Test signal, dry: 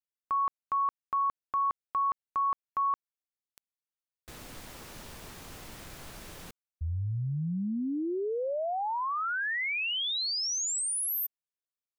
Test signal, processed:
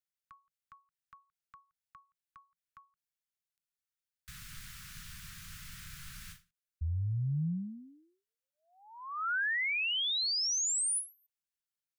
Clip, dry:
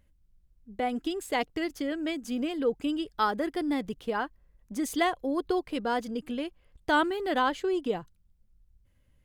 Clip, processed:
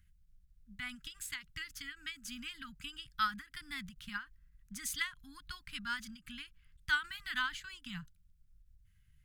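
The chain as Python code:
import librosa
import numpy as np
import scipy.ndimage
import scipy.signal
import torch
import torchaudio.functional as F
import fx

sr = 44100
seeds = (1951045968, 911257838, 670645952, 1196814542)

y = scipy.signal.sosfilt(scipy.signal.ellip(3, 1.0, 70, [170.0, 1400.0], 'bandstop', fs=sr, output='sos'), x)
y = fx.end_taper(y, sr, db_per_s=210.0)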